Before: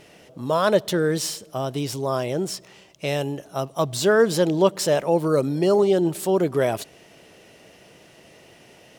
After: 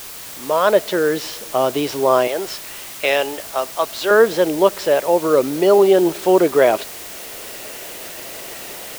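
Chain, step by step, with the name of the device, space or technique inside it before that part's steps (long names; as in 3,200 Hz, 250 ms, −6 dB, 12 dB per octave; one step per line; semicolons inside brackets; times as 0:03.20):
0:02.27–0:04.11: high-pass filter 890 Hz 6 dB per octave
dictaphone (band-pass filter 350–3,200 Hz; automatic gain control gain up to 15.5 dB; tape wow and flutter; white noise bed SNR 16 dB)
level −1 dB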